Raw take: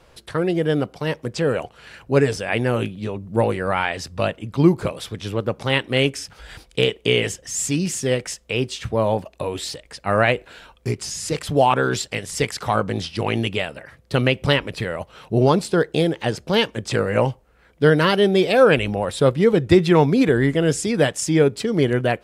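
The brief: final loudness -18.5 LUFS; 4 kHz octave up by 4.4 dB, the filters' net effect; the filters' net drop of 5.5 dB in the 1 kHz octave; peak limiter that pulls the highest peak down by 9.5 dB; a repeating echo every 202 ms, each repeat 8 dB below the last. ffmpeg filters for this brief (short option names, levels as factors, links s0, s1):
-af "equalizer=f=1000:t=o:g=-8,equalizer=f=4000:t=o:g=7,alimiter=limit=0.316:level=0:latency=1,aecho=1:1:202|404|606|808|1010:0.398|0.159|0.0637|0.0255|0.0102,volume=1.58"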